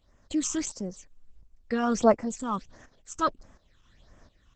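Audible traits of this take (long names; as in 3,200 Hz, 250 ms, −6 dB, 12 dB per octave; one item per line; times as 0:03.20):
phaser sweep stages 8, 1.5 Hz, lowest notch 570–3,900 Hz
tremolo saw up 1.4 Hz, depth 75%
Opus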